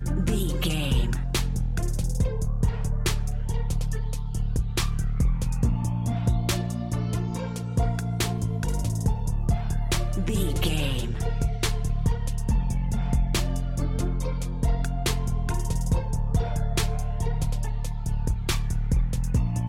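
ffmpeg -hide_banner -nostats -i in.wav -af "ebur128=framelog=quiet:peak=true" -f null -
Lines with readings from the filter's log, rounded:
Integrated loudness:
  I:         -27.5 LUFS
  Threshold: -37.5 LUFS
Loudness range:
  LRA:         1.2 LU
  Threshold: -47.6 LUFS
  LRA low:   -28.2 LUFS
  LRA high:  -27.1 LUFS
True peak:
  Peak:      -11.4 dBFS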